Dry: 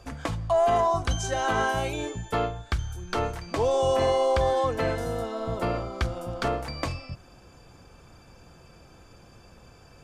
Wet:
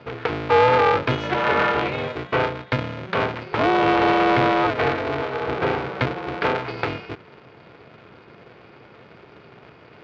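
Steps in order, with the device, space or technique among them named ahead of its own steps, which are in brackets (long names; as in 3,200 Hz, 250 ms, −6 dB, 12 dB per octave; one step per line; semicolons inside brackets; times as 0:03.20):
high-frequency loss of the air 110 metres
ring modulator pedal into a guitar cabinet (ring modulator with a square carrier 190 Hz; loudspeaker in its box 110–4,000 Hz, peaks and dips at 120 Hz +3 dB, 260 Hz −7 dB, 420 Hz +8 dB, 1,400 Hz +4 dB, 2,300 Hz +5 dB)
level +4.5 dB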